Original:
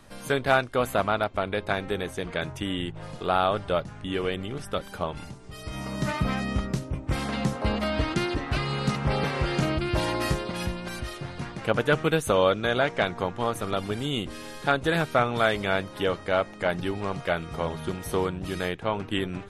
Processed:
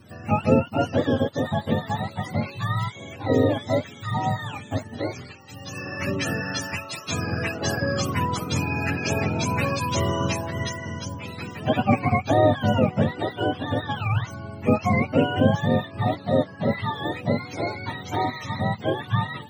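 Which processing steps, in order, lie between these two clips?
spectrum inverted on a logarithmic axis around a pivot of 590 Hz; trim +3.5 dB

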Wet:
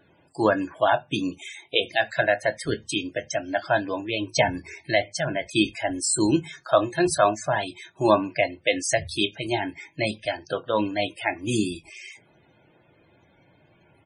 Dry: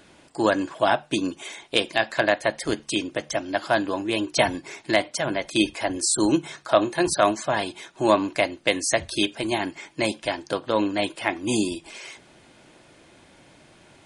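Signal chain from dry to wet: doubling 25 ms -13 dB; on a send at -21.5 dB: reverberation RT60 0.30 s, pre-delay 3 ms; on the sum: spectral noise reduction 6 dB; loudest bins only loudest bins 64

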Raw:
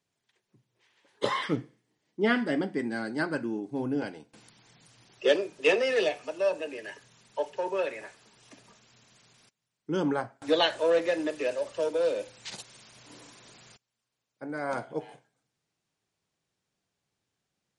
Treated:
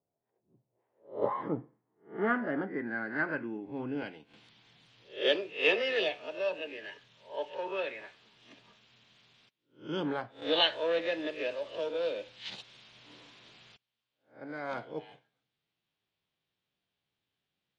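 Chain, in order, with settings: reverse spectral sustain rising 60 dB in 0.33 s; low-pass sweep 670 Hz -> 3.4 kHz, 0.91–4.45 s; trim -6.5 dB

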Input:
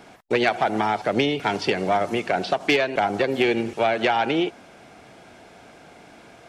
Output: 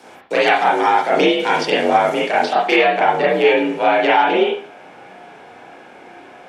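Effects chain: tone controls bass -5 dB, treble +6 dB, from 2.52 s treble -3 dB; frequency shift +56 Hz; reverberation, pre-delay 32 ms, DRR -6.5 dB

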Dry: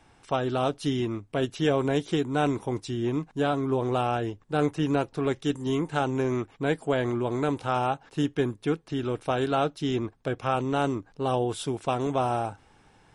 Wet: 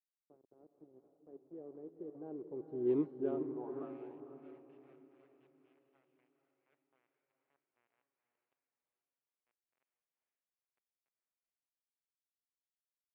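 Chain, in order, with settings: Doppler pass-by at 2.98 s, 20 m/s, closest 2.4 m; pre-emphasis filter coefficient 0.8; word length cut 10-bit, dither none; band-pass sweep 370 Hz -> 2.4 kHz, 3.42–3.98 s; echo that smears into a reverb 470 ms, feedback 42%, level -6.5 dB; level-controlled noise filter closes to 560 Hz, open at -36 dBFS; trim +14 dB

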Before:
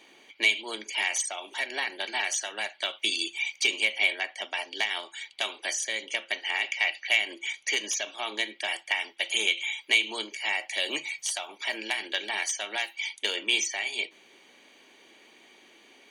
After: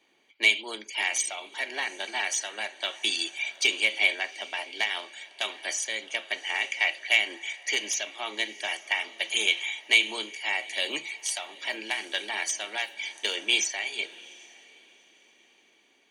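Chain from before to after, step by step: echo that smears into a reverb 787 ms, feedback 43%, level -16 dB; three bands expanded up and down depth 40%

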